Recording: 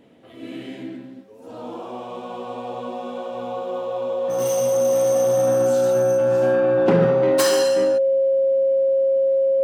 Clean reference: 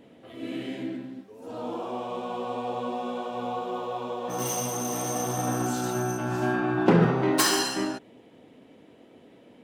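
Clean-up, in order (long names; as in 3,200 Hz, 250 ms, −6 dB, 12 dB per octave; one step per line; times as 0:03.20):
notch filter 540 Hz, Q 30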